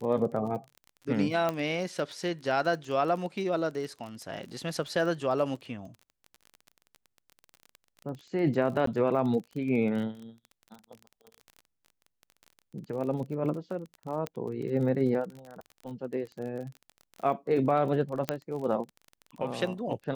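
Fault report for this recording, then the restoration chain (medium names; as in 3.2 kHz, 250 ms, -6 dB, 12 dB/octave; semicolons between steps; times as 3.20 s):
crackle 29 per s -37 dBFS
1.49 s: pop -16 dBFS
8.86–8.87 s: dropout 13 ms
14.27 s: pop -19 dBFS
18.29 s: pop -11 dBFS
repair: de-click; interpolate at 8.86 s, 13 ms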